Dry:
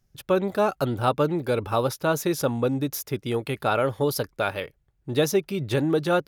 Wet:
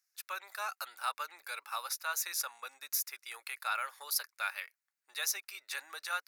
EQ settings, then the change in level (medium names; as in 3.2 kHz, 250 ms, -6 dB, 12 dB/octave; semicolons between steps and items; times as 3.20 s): Bessel high-pass 1.9 kHz, order 4; peaking EQ 3.2 kHz -13.5 dB 0.34 oct; 0.0 dB